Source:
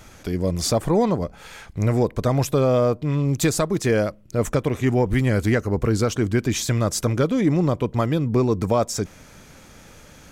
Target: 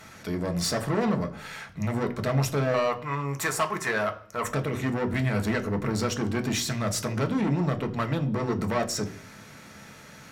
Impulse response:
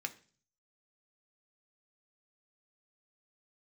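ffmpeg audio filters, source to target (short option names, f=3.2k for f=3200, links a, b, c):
-filter_complex "[0:a]asettb=1/sr,asplit=3[a][b][c];[a]atrim=end=2.744[d];[b]atrim=start=2.74:end=4.46,asetpts=PTS-STARTPTS,afade=t=in:d=0.004:c=qsin,afade=t=out:st=1.716:d=0.004:c=qsin,equalizer=f=125:t=o:w=1:g=-11,equalizer=f=250:t=o:w=1:g=-12,equalizer=f=500:t=o:w=1:g=-3,equalizer=f=1k:t=o:w=1:g=11,equalizer=f=2k:t=o:w=1:g=3,equalizer=f=4k:t=o:w=1:g=-10[e];[c]atrim=start=4.456[f];[d][e]acrossfade=d=0.004:c1=hsin:c2=qsin[g];[g][f]acrossfade=d=0.004:c1=qsin:c2=hsin,asoftclip=type=tanh:threshold=-21dB[h];[1:a]atrim=start_sample=2205,asetrate=34839,aresample=44100[i];[h][i]afir=irnorm=-1:irlink=0"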